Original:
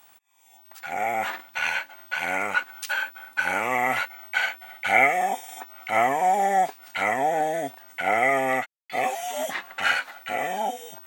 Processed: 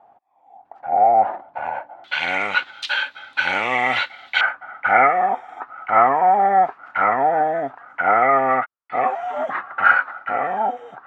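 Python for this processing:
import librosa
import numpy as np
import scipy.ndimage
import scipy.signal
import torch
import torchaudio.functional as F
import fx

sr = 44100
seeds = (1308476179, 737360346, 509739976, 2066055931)

y = fx.lowpass_res(x, sr, hz=fx.steps((0.0, 740.0), (2.04, 3700.0), (4.41, 1300.0)), q=3.8)
y = F.gain(torch.from_numpy(y), 2.5).numpy()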